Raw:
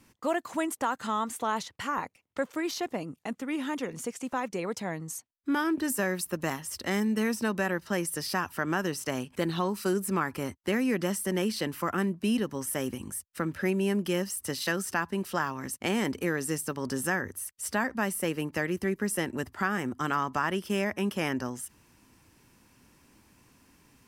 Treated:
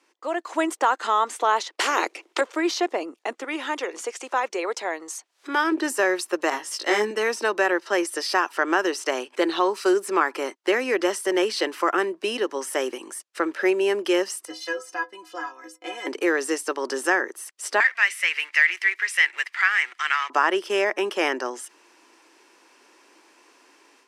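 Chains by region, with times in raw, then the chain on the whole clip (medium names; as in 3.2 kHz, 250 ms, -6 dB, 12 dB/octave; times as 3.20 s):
1.78–2.41 s: peaking EQ 340 Hz +9.5 dB 0.7 oct + spectrum-flattening compressor 2:1
3.44–5.72 s: high-pass 440 Hz 6 dB/octave + upward compressor, threshold -37 dBFS
6.50–7.11 s: doubling 19 ms -2 dB + three bands expanded up and down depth 40%
14.45–16.07 s: bass shelf 110 Hz +10.5 dB + inharmonic resonator 150 Hz, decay 0.28 s, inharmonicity 0.03
17.80–20.30 s: companding laws mixed up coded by mu + resonant high-pass 2.1 kHz, resonance Q 4.1 + treble shelf 6.2 kHz -6 dB
whole clip: low-pass 6.8 kHz 12 dB/octave; level rider gain up to 9.5 dB; Chebyshev high-pass 340 Hz, order 4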